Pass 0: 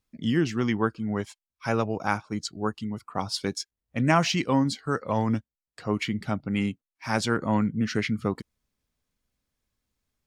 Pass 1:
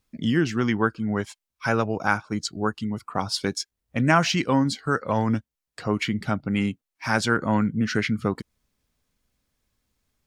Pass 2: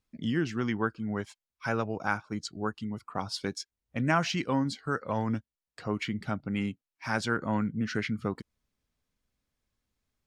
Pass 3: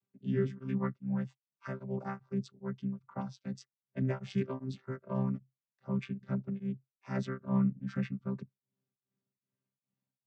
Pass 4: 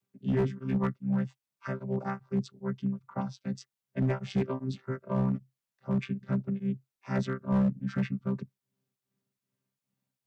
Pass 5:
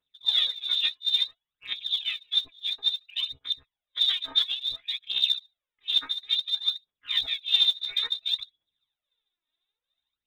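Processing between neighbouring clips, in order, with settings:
dynamic equaliser 1,500 Hz, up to +6 dB, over −46 dBFS, Q 4.1; in parallel at 0 dB: downward compressor, threshold −33 dBFS, peak gain reduction 17.5 dB
high-shelf EQ 8,600 Hz −6.5 dB; level −7 dB
channel vocoder with a chord as carrier bare fifth, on C3; tremolo along a rectified sine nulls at 2.5 Hz
hard clipping −26.5 dBFS, distortion −16 dB; level +5 dB
hum removal 430 Hz, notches 2; voice inversion scrambler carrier 3,800 Hz; phase shifter 0.58 Hz, delay 3.3 ms, feedback 67%

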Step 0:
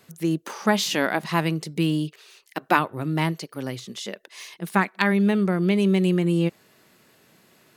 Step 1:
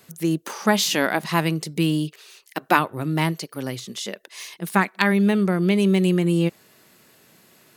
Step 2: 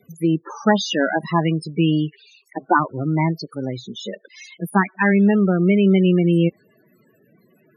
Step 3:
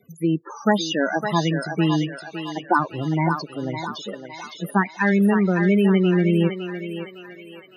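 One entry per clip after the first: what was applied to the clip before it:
high-shelf EQ 6,100 Hz +6 dB; level +1.5 dB
spectral peaks only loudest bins 16; level +3.5 dB
feedback echo with a high-pass in the loop 559 ms, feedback 53%, high-pass 540 Hz, level −5 dB; level −2.5 dB

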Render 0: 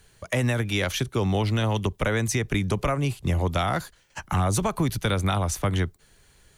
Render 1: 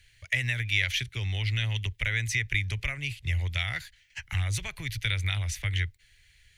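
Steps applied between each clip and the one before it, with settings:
drawn EQ curve 110 Hz 0 dB, 190 Hz −19 dB, 1,200 Hz −17 dB, 2,000 Hz +9 dB, 9,000 Hz −6 dB
level −3 dB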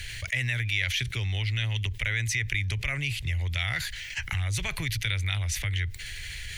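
envelope flattener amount 70%
level −3 dB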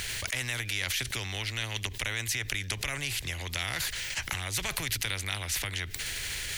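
every bin compressed towards the loudest bin 2 to 1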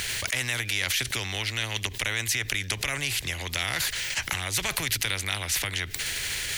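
low-shelf EQ 82 Hz −7.5 dB
in parallel at −11 dB: hard clipping −23.5 dBFS, distortion −16 dB
on the sum: level +2.5 dB

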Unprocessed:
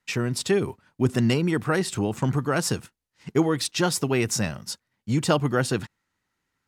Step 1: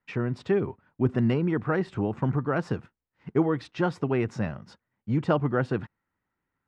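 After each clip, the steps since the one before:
low-pass filter 1,700 Hz 12 dB per octave
level −2 dB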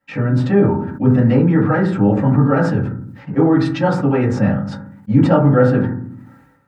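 in parallel at +1 dB: brickwall limiter −23 dBFS, peak gain reduction 11.5 dB
on the sum: convolution reverb RT60 0.40 s, pre-delay 3 ms, DRR −9 dB
level that may fall only so fast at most 54 dB per second
level −4.5 dB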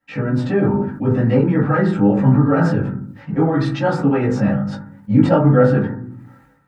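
multi-voice chorus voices 4, 0.46 Hz, delay 17 ms, depth 3.5 ms
level +2 dB

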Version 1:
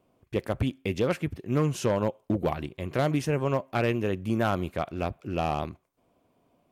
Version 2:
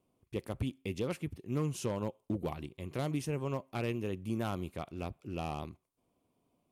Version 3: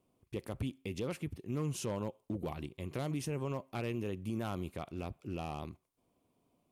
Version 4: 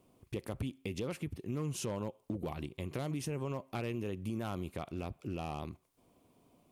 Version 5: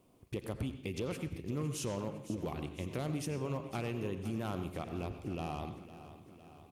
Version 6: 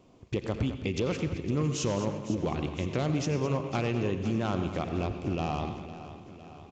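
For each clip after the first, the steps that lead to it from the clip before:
graphic EQ with 15 bands 630 Hz −5 dB, 1,600 Hz −7 dB, 10,000 Hz +6 dB; level −7.5 dB
brickwall limiter −29.5 dBFS, peak gain reduction 5.5 dB; level +1 dB
downward compressor 2 to 1, threshold −50 dBFS, peak gain reduction 10 dB; level +8.5 dB
repeating echo 507 ms, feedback 59%, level −14 dB; on a send at −9 dB: convolution reverb RT60 0.50 s, pre-delay 77 ms
downsampling to 16,000 Hz; single-tap delay 212 ms −12.5 dB; level +8 dB

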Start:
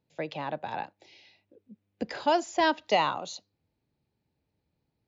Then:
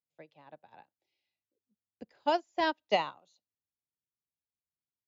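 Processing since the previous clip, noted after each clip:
expander for the loud parts 2.5 to 1, over −38 dBFS
level −1.5 dB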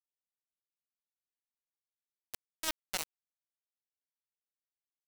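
tilt shelving filter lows −8 dB, about 1,300 Hz
reversed playback
downward compressor 4 to 1, threshold −39 dBFS, peak gain reduction 14 dB
reversed playback
bit reduction 5 bits
level +6 dB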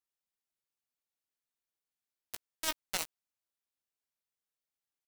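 double-tracking delay 17 ms −9.5 dB
level +1 dB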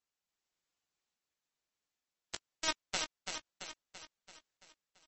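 sample-and-hold tremolo
on a send: repeating echo 336 ms, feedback 54%, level −5.5 dB
on the sum: level +6 dB
MP3 32 kbit/s 32,000 Hz

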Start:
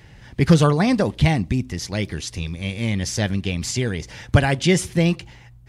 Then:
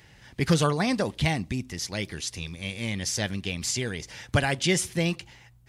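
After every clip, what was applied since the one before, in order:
spectral tilt +1.5 dB per octave
level −5 dB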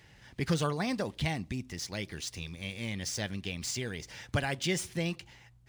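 running median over 3 samples
in parallel at −3 dB: downward compressor, threshold −33 dBFS, peak gain reduction 15.5 dB
on the sum: level −8.5 dB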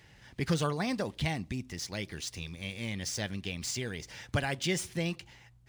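no processing that can be heard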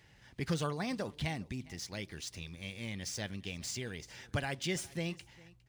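single-tap delay 407 ms −22.5 dB
level −4.5 dB

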